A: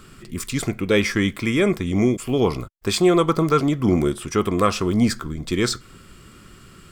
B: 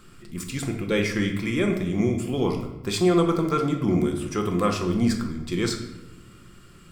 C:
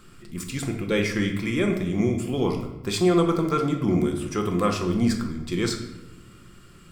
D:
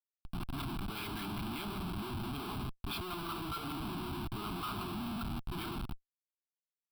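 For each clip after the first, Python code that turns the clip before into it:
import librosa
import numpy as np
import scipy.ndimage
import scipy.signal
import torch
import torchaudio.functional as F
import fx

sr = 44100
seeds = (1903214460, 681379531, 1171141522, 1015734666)

y1 = fx.room_shoebox(x, sr, seeds[0], volume_m3=440.0, walls='mixed', distance_m=0.85)
y1 = y1 * 10.0 ** (-6.5 / 20.0)
y2 = y1
y3 = fx.filter_lfo_bandpass(y2, sr, shape='sine', hz=5.2, low_hz=470.0, high_hz=2100.0, q=0.81)
y3 = fx.schmitt(y3, sr, flips_db=-38.0)
y3 = fx.fixed_phaser(y3, sr, hz=1900.0, stages=6)
y3 = y3 * 10.0 ** (-4.5 / 20.0)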